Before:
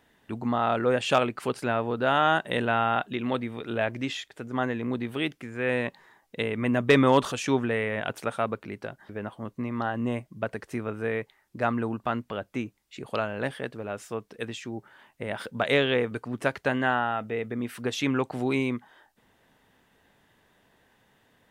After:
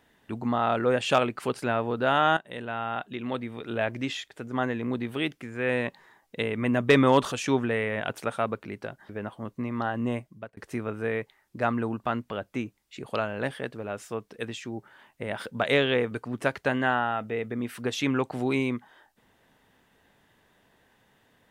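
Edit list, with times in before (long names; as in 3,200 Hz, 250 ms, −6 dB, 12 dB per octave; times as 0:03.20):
0:02.37–0:03.96: fade in, from −13.5 dB
0:10.15–0:10.57: fade out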